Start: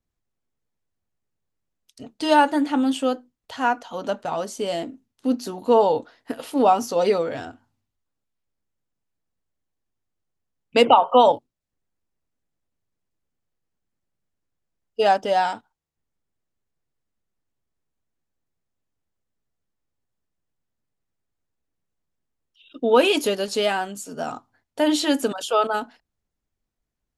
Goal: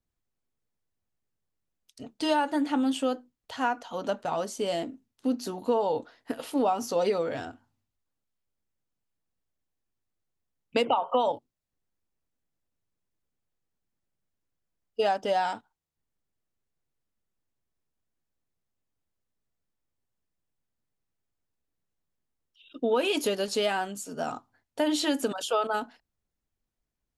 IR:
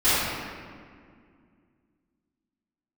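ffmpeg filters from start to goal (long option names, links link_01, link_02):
-af "acompressor=threshold=-19dB:ratio=5,volume=-3dB"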